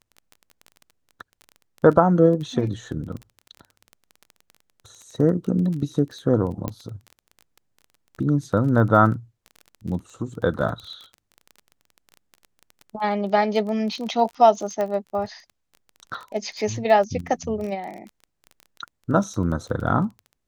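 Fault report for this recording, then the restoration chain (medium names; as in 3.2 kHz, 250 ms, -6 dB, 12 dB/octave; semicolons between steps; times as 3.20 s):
crackle 20 per s -31 dBFS
6.68 s: pop -14 dBFS
14.81 s: pop -15 dBFS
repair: de-click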